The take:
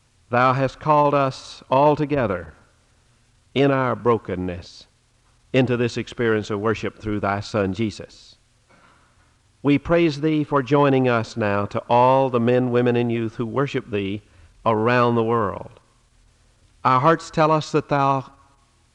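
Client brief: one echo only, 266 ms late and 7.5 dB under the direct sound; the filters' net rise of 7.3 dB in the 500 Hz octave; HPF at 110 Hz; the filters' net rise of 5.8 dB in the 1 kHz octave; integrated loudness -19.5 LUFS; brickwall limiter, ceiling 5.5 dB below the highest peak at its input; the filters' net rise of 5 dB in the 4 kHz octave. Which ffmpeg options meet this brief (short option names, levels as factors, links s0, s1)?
-af "highpass=110,equalizer=f=500:t=o:g=7.5,equalizer=f=1000:t=o:g=4.5,equalizer=f=4000:t=o:g=6,alimiter=limit=0.631:level=0:latency=1,aecho=1:1:266:0.422,volume=0.708"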